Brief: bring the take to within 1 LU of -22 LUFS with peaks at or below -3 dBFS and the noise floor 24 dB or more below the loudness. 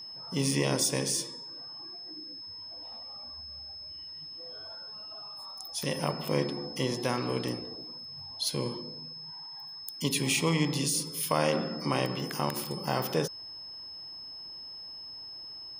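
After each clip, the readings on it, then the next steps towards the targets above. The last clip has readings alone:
steady tone 5.2 kHz; tone level -41 dBFS; loudness -32.5 LUFS; peak level -12.0 dBFS; loudness target -22.0 LUFS
-> band-stop 5.2 kHz, Q 30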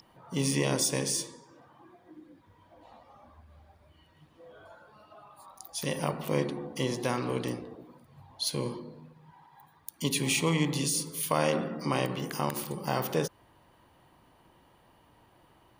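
steady tone not found; loudness -30.5 LUFS; peak level -12.0 dBFS; loudness target -22.0 LUFS
-> trim +8.5 dB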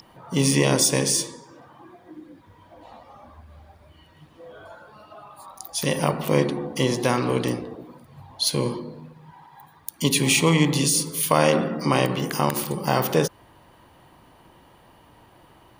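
loudness -22.0 LUFS; peak level -3.5 dBFS; noise floor -54 dBFS

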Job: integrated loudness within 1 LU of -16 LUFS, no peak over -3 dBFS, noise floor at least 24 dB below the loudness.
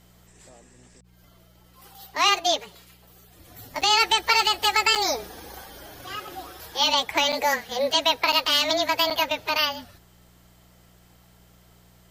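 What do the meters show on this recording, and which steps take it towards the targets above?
dropouts 5; longest dropout 6.8 ms; hum 60 Hz; highest harmonic 180 Hz; hum level -55 dBFS; loudness -21.5 LUFS; peak level -7.0 dBFS; loudness target -16.0 LUFS
-> interpolate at 3.81/4.95/7.32/8.32/9.10 s, 6.8 ms; de-hum 60 Hz, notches 3; trim +5.5 dB; peak limiter -3 dBFS

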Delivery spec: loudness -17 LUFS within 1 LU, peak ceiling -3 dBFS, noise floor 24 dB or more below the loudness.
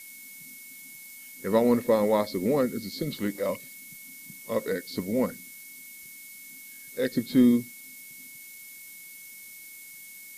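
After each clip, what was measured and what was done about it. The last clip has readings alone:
steady tone 2.2 kHz; tone level -48 dBFS; noise floor -46 dBFS; noise floor target -51 dBFS; loudness -26.5 LUFS; peak level -10.0 dBFS; loudness target -17.0 LUFS
-> band-stop 2.2 kHz, Q 30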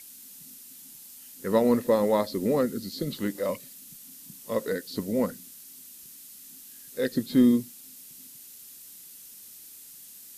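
steady tone not found; noise floor -48 dBFS; noise floor target -51 dBFS
-> noise reduction 6 dB, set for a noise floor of -48 dBFS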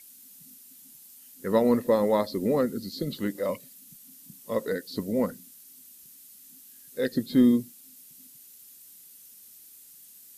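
noise floor -51 dBFS; loudness -26.5 LUFS; peak level -10.0 dBFS; loudness target -17.0 LUFS
-> trim +9.5 dB; peak limiter -3 dBFS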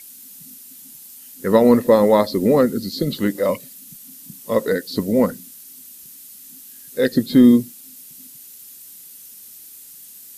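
loudness -17.5 LUFS; peak level -3.0 dBFS; noise floor -42 dBFS

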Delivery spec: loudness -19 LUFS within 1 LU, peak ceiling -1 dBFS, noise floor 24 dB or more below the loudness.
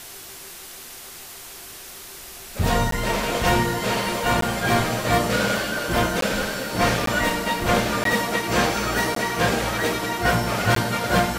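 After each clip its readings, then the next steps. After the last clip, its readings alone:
dropouts 7; longest dropout 13 ms; noise floor -40 dBFS; noise floor target -46 dBFS; loudness -22.0 LUFS; peak level -6.0 dBFS; loudness target -19.0 LUFS
-> interpolate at 2.91/4.41/6.21/7.06/8.04/9.15/10.75 s, 13 ms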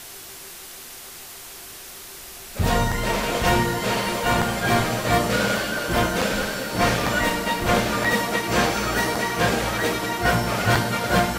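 dropouts 0; noise floor -40 dBFS; noise floor target -46 dBFS
-> noise print and reduce 6 dB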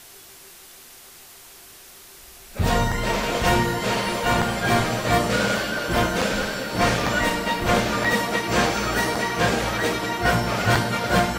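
noise floor -46 dBFS; loudness -22.0 LUFS; peak level -6.0 dBFS; loudness target -19.0 LUFS
-> trim +3 dB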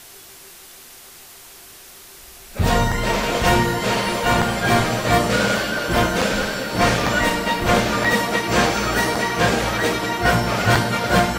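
loudness -19.0 LUFS; peak level -3.0 dBFS; noise floor -43 dBFS

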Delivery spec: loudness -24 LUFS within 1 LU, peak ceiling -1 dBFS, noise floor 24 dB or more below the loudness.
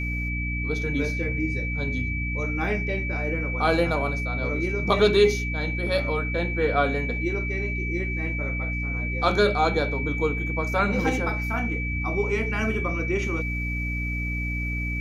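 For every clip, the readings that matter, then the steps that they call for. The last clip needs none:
hum 60 Hz; highest harmonic 300 Hz; hum level -27 dBFS; steady tone 2.3 kHz; tone level -30 dBFS; loudness -25.0 LUFS; peak level -6.0 dBFS; loudness target -24.0 LUFS
-> de-hum 60 Hz, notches 5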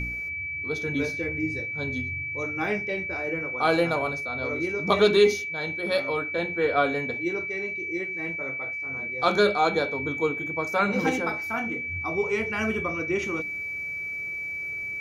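hum not found; steady tone 2.3 kHz; tone level -30 dBFS
-> band-stop 2.3 kHz, Q 30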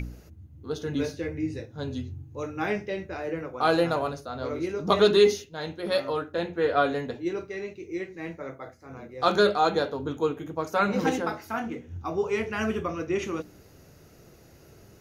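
steady tone not found; loudness -27.5 LUFS; peak level -6.5 dBFS; loudness target -24.0 LUFS
-> trim +3.5 dB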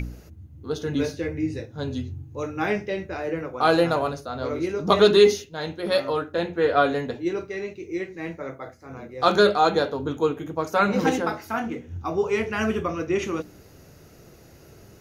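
loudness -24.0 LUFS; peak level -3.0 dBFS; noise floor -50 dBFS

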